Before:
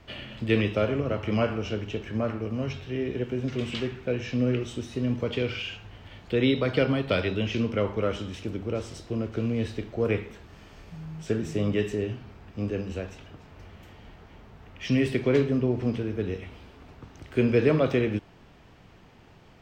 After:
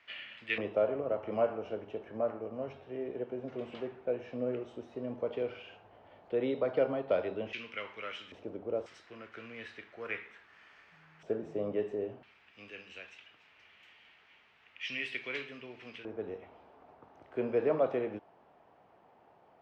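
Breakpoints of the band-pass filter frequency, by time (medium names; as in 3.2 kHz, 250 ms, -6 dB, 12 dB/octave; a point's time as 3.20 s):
band-pass filter, Q 1.9
2.1 kHz
from 0.58 s 660 Hz
from 7.53 s 2.3 kHz
from 8.32 s 610 Hz
from 8.86 s 1.8 kHz
from 11.23 s 610 Hz
from 12.23 s 2.5 kHz
from 16.05 s 730 Hz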